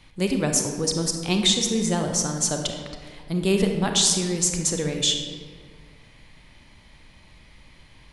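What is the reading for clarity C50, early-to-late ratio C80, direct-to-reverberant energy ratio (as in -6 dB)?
4.5 dB, 6.5 dB, 3.5 dB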